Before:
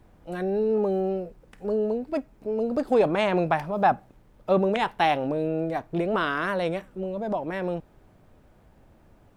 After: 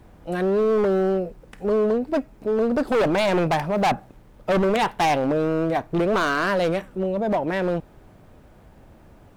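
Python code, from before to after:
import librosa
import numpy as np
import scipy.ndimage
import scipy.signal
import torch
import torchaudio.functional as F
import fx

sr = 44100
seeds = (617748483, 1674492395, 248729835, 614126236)

y = fx.diode_clip(x, sr, knee_db=-14.0)
y = np.clip(y, -10.0 ** (-24.0 / 20.0), 10.0 ** (-24.0 / 20.0))
y = y * 10.0 ** (7.0 / 20.0)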